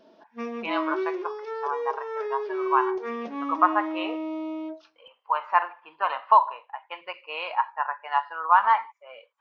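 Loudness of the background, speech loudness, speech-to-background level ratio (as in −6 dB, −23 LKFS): −31.5 LKFS, −26.0 LKFS, 5.5 dB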